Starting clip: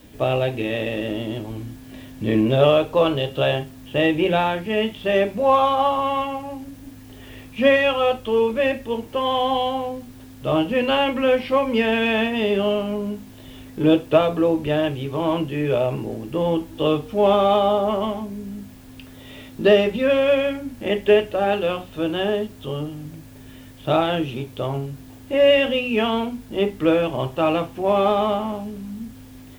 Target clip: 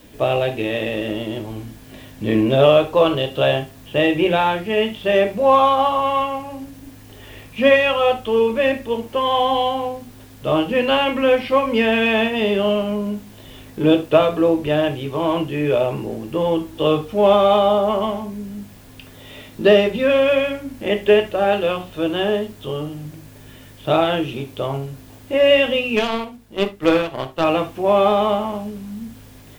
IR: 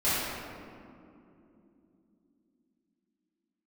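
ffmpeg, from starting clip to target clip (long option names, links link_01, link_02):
-filter_complex "[0:a]lowshelf=frequency=170:gain=-4,asettb=1/sr,asplit=3[link_01][link_02][link_03];[link_01]atrim=end=25.964[link_04];[link_02]atrim=start=25.96:end=27.44,asetpts=PTS-STARTPTS,afade=type=in:duration=0.004:curve=qsin,afade=type=out:start_time=1.476:duration=0.004:curve=qsin,aeval=exprs='0.501*(cos(1*acos(clip(val(0)/0.501,-1,1)))-cos(1*PI/2))+0.0501*(cos(7*acos(clip(val(0)/0.501,-1,1)))-cos(7*PI/2))':channel_layout=same[link_05];[link_03]atrim=start=27.436[link_06];[link_04][link_05]acrossfade=duration=0.004:curve1=hsin:curve2=qsin[link_07];[link_07][link_06]acrossfade=duration=0.004:curve1=qsin:curve2=hsin,asplit=2[link_08][link_09];[1:a]atrim=start_sample=2205,atrim=end_sample=3528[link_10];[link_09][link_10]afir=irnorm=-1:irlink=0,volume=-19dB[link_11];[link_08][link_11]amix=inputs=2:normalize=0,volume=2dB"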